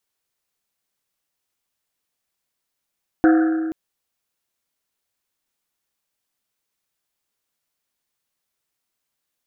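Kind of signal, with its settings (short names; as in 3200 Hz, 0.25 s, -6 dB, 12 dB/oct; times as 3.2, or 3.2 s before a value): Risset drum length 0.48 s, pitch 320 Hz, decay 2.23 s, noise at 1500 Hz, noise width 430 Hz, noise 15%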